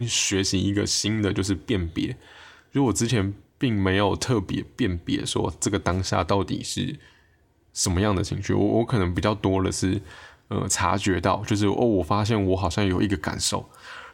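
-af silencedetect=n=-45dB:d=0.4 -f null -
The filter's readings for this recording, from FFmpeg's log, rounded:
silence_start: 7.11
silence_end: 7.75 | silence_duration: 0.64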